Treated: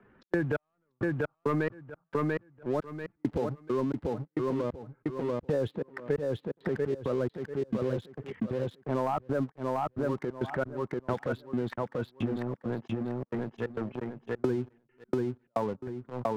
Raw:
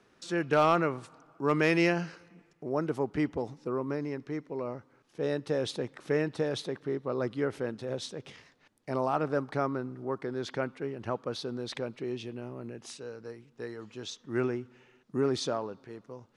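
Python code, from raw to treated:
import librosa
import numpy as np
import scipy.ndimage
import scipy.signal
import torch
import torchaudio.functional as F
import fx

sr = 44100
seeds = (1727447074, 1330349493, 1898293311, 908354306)

y = fx.bin_expand(x, sr, power=1.5)
y = scipy.signal.sosfilt(scipy.signal.butter(4, 2000.0, 'lowpass', fs=sr, output='sos'), y)
y = fx.transient(y, sr, attack_db=-7, sustain_db=9)
y = fx.leveller(y, sr, passes=2)
y = fx.step_gate(y, sr, bpm=134, pattern='xx.xx....x', floor_db=-60.0, edge_ms=4.5)
y = fx.echo_feedback(y, sr, ms=690, feedback_pct=18, wet_db=-4.5)
y = fx.band_squash(y, sr, depth_pct=100)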